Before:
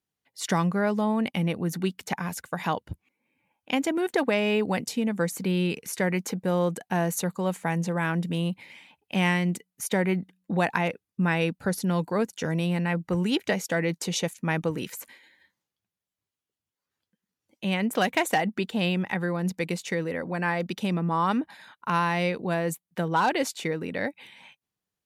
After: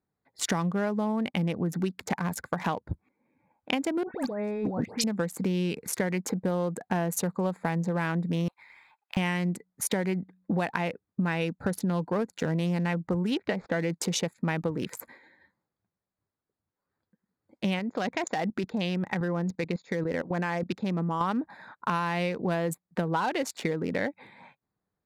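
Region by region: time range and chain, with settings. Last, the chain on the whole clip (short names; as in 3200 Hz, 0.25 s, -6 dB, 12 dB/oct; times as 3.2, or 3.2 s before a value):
4.03–5.04 high shelf 9100 Hz -5.5 dB + negative-ratio compressor -34 dBFS + dispersion highs, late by 0.146 s, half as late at 2200 Hz
8.48–9.17 inverse Chebyshev high-pass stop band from 220 Hz, stop band 70 dB + compressor 1.5:1, threshold -48 dBFS + short-mantissa float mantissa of 2-bit
13.34–13.9 median filter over 5 samples + air absorption 99 m
17.79–21.21 level quantiser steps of 16 dB + brick-wall FIR low-pass 7200 Hz + high shelf 4300 Hz +5.5 dB
whole clip: Wiener smoothing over 15 samples; compressor 6:1, threshold -32 dBFS; gain +6.5 dB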